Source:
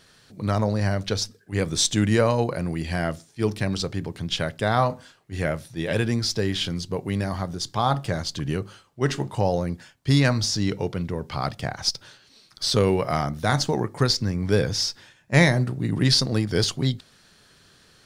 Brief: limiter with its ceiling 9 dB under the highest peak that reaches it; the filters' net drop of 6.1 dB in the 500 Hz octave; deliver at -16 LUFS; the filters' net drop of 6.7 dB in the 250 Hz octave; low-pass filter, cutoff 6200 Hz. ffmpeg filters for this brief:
-af "lowpass=6.2k,equalizer=f=250:t=o:g=-9,equalizer=f=500:t=o:g=-5,volume=13.5dB,alimiter=limit=-3.5dB:level=0:latency=1"

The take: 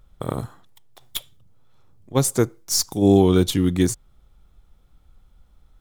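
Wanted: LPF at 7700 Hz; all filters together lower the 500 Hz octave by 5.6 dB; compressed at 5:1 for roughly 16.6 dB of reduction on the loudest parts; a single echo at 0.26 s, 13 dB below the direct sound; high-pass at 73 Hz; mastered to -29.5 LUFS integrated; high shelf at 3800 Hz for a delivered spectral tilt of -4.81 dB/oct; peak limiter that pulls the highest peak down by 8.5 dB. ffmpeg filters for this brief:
-af "highpass=73,lowpass=7.7k,equalizer=f=500:t=o:g=-8,highshelf=f=3.8k:g=-6.5,acompressor=threshold=-33dB:ratio=5,alimiter=level_in=2.5dB:limit=-24dB:level=0:latency=1,volume=-2.5dB,aecho=1:1:260:0.224,volume=10dB"

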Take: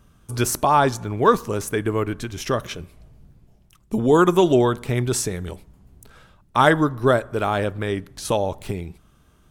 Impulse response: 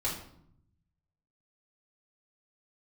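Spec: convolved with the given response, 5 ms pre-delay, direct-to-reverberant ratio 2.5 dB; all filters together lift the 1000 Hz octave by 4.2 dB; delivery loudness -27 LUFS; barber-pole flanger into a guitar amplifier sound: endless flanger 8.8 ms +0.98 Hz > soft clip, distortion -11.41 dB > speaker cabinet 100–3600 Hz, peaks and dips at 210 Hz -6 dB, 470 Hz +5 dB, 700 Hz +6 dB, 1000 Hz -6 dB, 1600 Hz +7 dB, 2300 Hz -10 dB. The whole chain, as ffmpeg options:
-filter_complex "[0:a]equalizer=f=1k:t=o:g=5.5,asplit=2[a][b];[1:a]atrim=start_sample=2205,adelay=5[c];[b][c]afir=irnorm=-1:irlink=0,volume=-8dB[d];[a][d]amix=inputs=2:normalize=0,asplit=2[e][f];[f]adelay=8.8,afreqshift=0.98[g];[e][g]amix=inputs=2:normalize=1,asoftclip=threshold=-12dB,highpass=100,equalizer=f=210:t=q:w=4:g=-6,equalizer=f=470:t=q:w=4:g=5,equalizer=f=700:t=q:w=4:g=6,equalizer=f=1k:t=q:w=4:g=-6,equalizer=f=1.6k:t=q:w=4:g=7,equalizer=f=2.3k:t=q:w=4:g=-10,lowpass=f=3.6k:w=0.5412,lowpass=f=3.6k:w=1.3066,volume=-6.5dB"

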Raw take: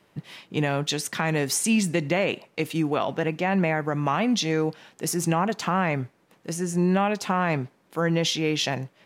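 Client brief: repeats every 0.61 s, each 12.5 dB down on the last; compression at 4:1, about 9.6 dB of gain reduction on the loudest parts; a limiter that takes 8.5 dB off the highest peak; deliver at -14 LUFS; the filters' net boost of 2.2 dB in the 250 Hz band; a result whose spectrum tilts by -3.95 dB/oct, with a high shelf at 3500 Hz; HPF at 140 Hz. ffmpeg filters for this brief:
-af "highpass=140,equalizer=f=250:t=o:g=4,highshelf=f=3.5k:g=8.5,acompressor=threshold=-26dB:ratio=4,alimiter=limit=-20.5dB:level=0:latency=1,aecho=1:1:610|1220|1830:0.237|0.0569|0.0137,volume=17.5dB"

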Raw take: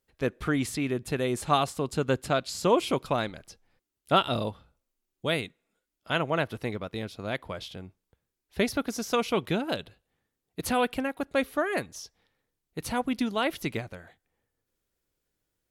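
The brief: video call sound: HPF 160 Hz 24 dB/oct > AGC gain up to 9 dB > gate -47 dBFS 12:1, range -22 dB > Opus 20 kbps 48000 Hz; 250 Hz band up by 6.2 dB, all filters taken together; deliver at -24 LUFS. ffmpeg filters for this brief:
-af "highpass=f=160:w=0.5412,highpass=f=160:w=1.3066,equalizer=f=250:t=o:g=7.5,dynaudnorm=m=9dB,agate=range=-22dB:threshold=-47dB:ratio=12,volume=2.5dB" -ar 48000 -c:a libopus -b:a 20k

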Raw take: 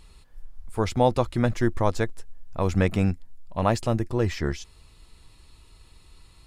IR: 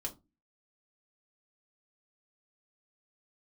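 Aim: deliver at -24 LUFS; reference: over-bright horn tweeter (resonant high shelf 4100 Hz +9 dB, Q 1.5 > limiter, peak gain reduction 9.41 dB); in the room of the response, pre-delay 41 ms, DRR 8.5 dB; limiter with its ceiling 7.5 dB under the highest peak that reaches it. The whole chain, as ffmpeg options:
-filter_complex "[0:a]alimiter=limit=-15dB:level=0:latency=1,asplit=2[a][b];[1:a]atrim=start_sample=2205,adelay=41[c];[b][c]afir=irnorm=-1:irlink=0,volume=-8dB[d];[a][d]amix=inputs=2:normalize=0,highshelf=f=4.1k:t=q:w=1.5:g=9,volume=9dB,alimiter=limit=-12.5dB:level=0:latency=1"

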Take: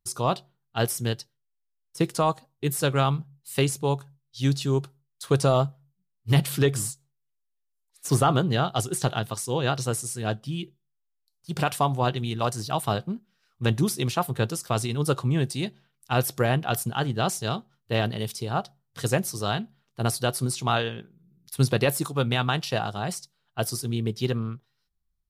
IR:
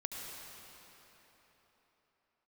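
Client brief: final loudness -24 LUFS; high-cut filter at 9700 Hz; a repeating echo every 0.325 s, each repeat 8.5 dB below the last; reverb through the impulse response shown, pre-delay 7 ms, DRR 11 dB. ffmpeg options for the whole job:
-filter_complex "[0:a]lowpass=9.7k,aecho=1:1:325|650|975|1300:0.376|0.143|0.0543|0.0206,asplit=2[a][b];[1:a]atrim=start_sample=2205,adelay=7[c];[b][c]afir=irnorm=-1:irlink=0,volume=-11.5dB[d];[a][d]amix=inputs=2:normalize=0,volume=2dB"

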